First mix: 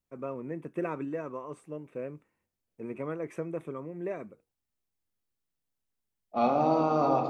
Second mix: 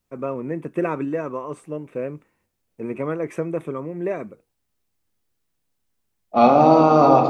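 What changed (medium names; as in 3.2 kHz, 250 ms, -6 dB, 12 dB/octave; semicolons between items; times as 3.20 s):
first voice +9.5 dB; second voice +12.0 dB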